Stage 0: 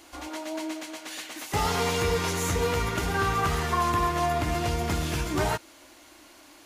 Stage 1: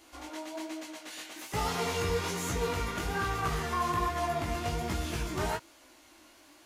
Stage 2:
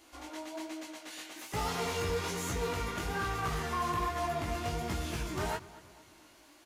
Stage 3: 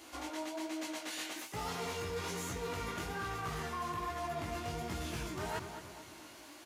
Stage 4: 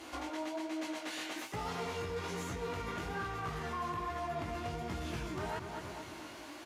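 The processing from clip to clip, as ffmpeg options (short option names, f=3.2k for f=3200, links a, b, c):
-af "flanger=delay=15.5:depth=6.6:speed=1.2,volume=-2.5dB"
-filter_complex "[0:a]volume=25.5dB,asoftclip=hard,volume=-25.5dB,asplit=2[a][b];[b]adelay=231,lowpass=f=3.2k:p=1,volume=-18dB,asplit=2[c][d];[d]adelay=231,lowpass=f=3.2k:p=1,volume=0.5,asplit=2[e][f];[f]adelay=231,lowpass=f=3.2k:p=1,volume=0.5,asplit=2[g][h];[h]adelay=231,lowpass=f=3.2k:p=1,volume=0.5[i];[a][c][e][g][i]amix=inputs=5:normalize=0,volume=-2dB"
-af "highpass=67,areverse,acompressor=threshold=-43dB:ratio=6,areverse,volume=6dB"
-af "aemphasis=mode=reproduction:type=cd,alimiter=level_in=12.5dB:limit=-24dB:level=0:latency=1:release=298,volume=-12.5dB,volume=6dB"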